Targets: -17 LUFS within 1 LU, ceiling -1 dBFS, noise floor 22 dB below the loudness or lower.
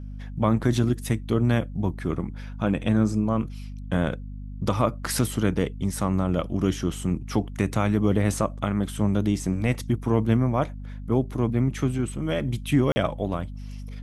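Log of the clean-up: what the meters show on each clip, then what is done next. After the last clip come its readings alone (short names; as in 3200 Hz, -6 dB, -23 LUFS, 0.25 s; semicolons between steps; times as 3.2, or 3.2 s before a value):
dropouts 1; longest dropout 40 ms; hum 50 Hz; harmonics up to 250 Hz; hum level -33 dBFS; loudness -25.5 LUFS; peak -8.0 dBFS; loudness target -17.0 LUFS
-> interpolate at 12.92, 40 ms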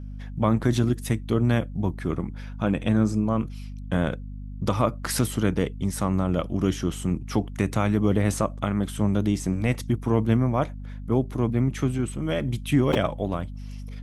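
dropouts 0; hum 50 Hz; harmonics up to 250 Hz; hum level -33 dBFS
-> de-hum 50 Hz, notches 5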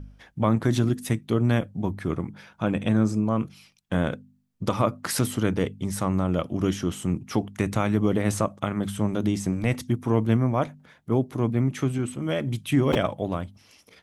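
hum none; loudness -26.0 LUFS; peak -8.0 dBFS; loudness target -17.0 LUFS
-> gain +9 dB; limiter -1 dBFS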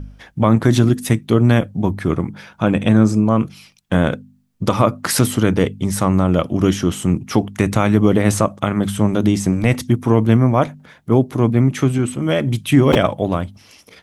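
loudness -17.0 LUFS; peak -1.0 dBFS; noise floor -52 dBFS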